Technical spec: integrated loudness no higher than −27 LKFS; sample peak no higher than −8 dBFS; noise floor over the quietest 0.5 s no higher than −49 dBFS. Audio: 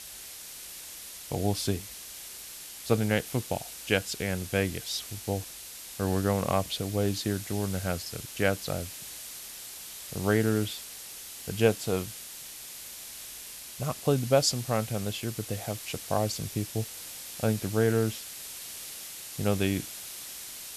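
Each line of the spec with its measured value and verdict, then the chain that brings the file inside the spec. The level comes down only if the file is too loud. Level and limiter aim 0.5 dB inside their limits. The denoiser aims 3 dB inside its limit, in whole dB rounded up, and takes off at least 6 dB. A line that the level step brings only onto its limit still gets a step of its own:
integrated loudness −31.0 LKFS: in spec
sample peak −9.0 dBFS: in spec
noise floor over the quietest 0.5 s −44 dBFS: out of spec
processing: broadband denoise 8 dB, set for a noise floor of −44 dBFS

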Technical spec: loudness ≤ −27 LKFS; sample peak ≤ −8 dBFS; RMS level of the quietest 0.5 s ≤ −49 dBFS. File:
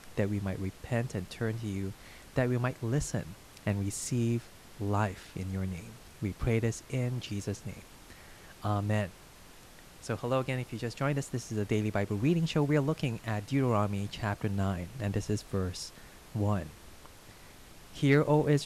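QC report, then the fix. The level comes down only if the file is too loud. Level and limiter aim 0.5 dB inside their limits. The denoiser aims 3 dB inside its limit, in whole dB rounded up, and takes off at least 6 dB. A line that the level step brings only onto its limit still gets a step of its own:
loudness −32.5 LKFS: in spec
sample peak −14.5 dBFS: in spec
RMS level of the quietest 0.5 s −53 dBFS: in spec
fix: no processing needed

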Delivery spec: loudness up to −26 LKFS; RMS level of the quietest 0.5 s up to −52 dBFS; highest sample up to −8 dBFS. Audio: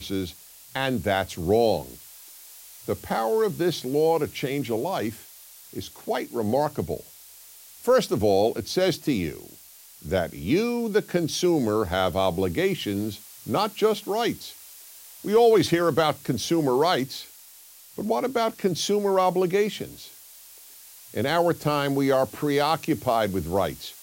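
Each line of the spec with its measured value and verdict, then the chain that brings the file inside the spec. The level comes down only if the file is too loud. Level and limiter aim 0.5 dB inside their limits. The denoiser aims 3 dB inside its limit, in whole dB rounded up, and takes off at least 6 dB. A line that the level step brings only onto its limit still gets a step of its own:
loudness −24.5 LKFS: out of spec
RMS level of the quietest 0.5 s −49 dBFS: out of spec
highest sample −9.0 dBFS: in spec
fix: broadband denoise 6 dB, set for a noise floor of −49 dBFS
level −2 dB

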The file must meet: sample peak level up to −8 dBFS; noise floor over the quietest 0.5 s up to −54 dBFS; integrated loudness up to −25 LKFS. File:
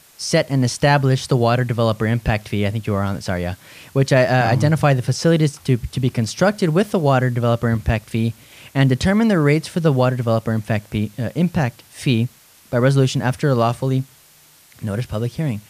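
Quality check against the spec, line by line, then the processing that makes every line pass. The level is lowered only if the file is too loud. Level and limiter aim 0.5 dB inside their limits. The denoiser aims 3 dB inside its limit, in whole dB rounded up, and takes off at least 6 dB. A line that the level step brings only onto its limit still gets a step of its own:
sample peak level −4.5 dBFS: out of spec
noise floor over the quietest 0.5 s −50 dBFS: out of spec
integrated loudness −19.0 LKFS: out of spec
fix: level −6.5 dB

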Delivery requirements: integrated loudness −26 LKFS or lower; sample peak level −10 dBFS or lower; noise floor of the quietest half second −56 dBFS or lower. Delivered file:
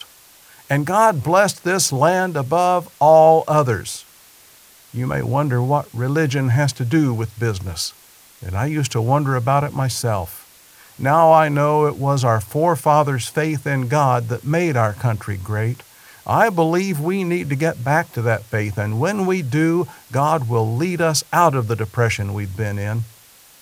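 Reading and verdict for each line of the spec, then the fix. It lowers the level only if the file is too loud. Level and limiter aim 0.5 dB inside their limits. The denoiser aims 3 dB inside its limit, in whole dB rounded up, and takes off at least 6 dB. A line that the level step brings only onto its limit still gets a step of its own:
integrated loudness −18.5 LKFS: out of spec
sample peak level −1.5 dBFS: out of spec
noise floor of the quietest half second −48 dBFS: out of spec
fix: broadband denoise 6 dB, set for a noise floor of −48 dBFS
level −8 dB
brickwall limiter −10.5 dBFS

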